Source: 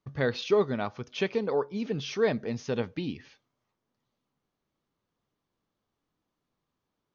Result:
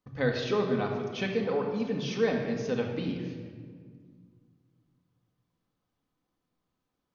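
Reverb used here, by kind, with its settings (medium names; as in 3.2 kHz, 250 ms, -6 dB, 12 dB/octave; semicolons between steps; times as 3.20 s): simulated room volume 2700 m³, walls mixed, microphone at 2 m; trim -3 dB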